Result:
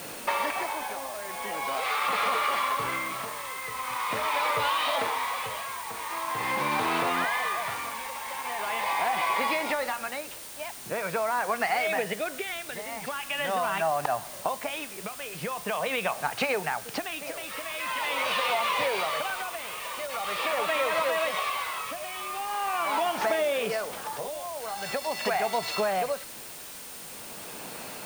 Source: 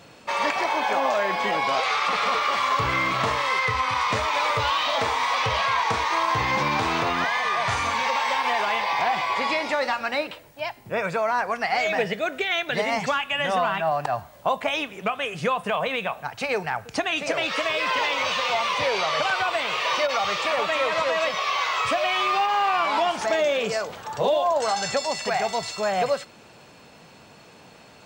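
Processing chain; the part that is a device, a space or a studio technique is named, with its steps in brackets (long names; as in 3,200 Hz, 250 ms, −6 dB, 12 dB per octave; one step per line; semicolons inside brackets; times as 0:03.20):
0:17.64–0:18.06: parametric band 450 Hz −14.5 dB 0.43 octaves
medium wave at night (band-pass filter 180–3,900 Hz; downward compressor, threshold −32 dBFS, peak gain reduction 13 dB; amplitude tremolo 0.43 Hz, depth 73%; steady tone 9,000 Hz −57 dBFS; white noise bed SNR 13 dB)
level +8 dB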